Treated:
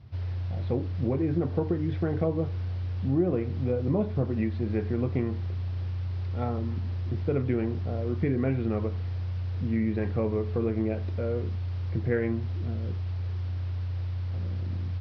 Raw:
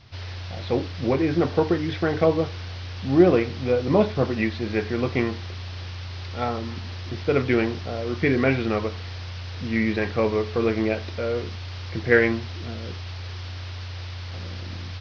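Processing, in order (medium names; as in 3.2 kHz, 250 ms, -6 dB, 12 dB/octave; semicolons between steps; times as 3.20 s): high-pass 74 Hz; tilt EQ -4 dB/octave; compression 3:1, threshold -15 dBFS, peak gain reduction 9 dB; trim -8.5 dB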